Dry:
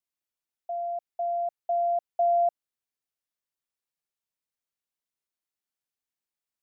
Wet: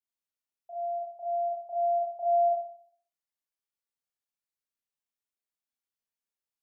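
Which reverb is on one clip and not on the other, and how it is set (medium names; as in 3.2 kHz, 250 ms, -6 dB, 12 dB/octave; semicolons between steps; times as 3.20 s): Schroeder reverb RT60 0.57 s, combs from 27 ms, DRR -7 dB; trim -12.5 dB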